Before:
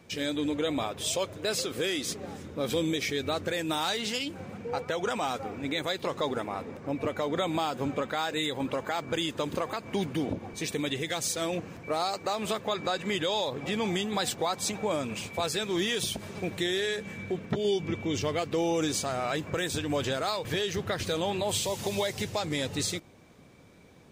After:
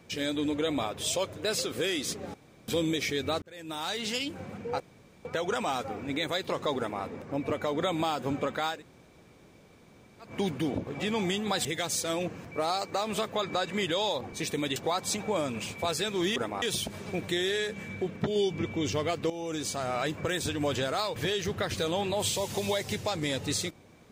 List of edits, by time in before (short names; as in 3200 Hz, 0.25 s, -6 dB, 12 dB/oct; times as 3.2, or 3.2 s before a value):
2.34–2.68 room tone
3.42–4.14 fade in
4.8 insert room tone 0.45 s
6.32–6.58 copy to 15.91
8.3–9.82 room tone, crossfade 0.16 s
10.42–10.97 swap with 13.53–14.31
18.59–19.21 fade in, from -13 dB